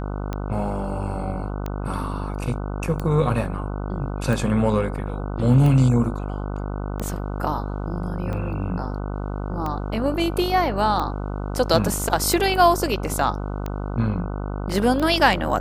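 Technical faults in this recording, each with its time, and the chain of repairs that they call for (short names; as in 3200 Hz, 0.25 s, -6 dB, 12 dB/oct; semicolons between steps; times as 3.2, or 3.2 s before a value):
buzz 50 Hz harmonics 30 -28 dBFS
tick 45 rpm -15 dBFS
8.33 gap 2.1 ms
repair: de-click; de-hum 50 Hz, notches 30; interpolate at 8.33, 2.1 ms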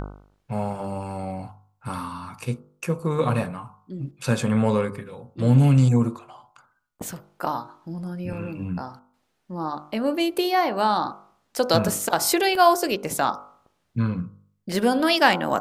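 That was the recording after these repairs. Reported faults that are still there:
none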